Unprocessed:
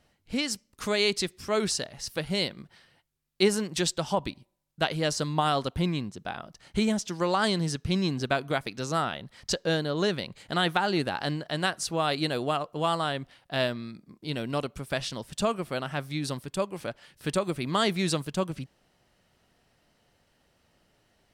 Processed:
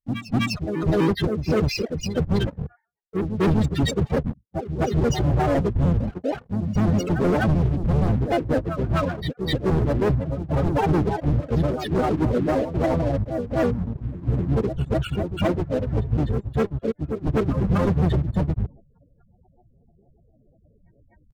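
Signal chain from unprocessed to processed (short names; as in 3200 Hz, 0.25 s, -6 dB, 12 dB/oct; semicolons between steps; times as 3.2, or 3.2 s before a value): trilling pitch shifter -4.5 st, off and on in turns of 77 ms; dynamic EQ 1000 Hz, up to -6 dB, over -42 dBFS, Q 0.93; in parallel at -7 dB: crossover distortion -40 dBFS; on the sum: high shelf 6100 Hz -8 dB; loudest bins only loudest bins 4; spectral noise reduction 8 dB; sample leveller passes 3; reverse echo 0.251 s -10.5 dB; gate with hold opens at -34 dBFS; reverse; upward compressor, threshold -23 dBFS; reverse; overloaded stage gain 20 dB; harmoniser -12 st -2 dB, -3 st -10 dB, +3 st -12 dB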